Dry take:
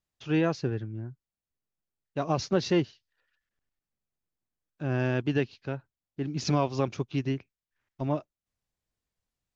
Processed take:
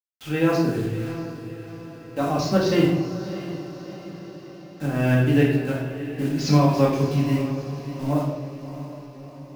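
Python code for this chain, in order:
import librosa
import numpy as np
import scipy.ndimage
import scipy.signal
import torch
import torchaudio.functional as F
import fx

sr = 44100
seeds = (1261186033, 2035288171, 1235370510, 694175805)

y = fx.peak_eq(x, sr, hz=150.0, db=-11.5, octaves=0.74, at=(0.92, 2.21))
y = fx.quant_dither(y, sr, seeds[0], bits=8, dither='none')
y = fx.tremolo_shape(y, sr, shape='saw_up', hz=3.5, depth_pct=55)
y = fx.echo_diffused(y, sr, ms=655, feedback_pct=55, wet_db=-12.5)
y = fx.room_shoebox(y, sr, seeds[1], volume_m3=390.0, walls='mixed', distance_m=2.1)
y = F.gain(torch.from_numpy(y), 3.0).numpy()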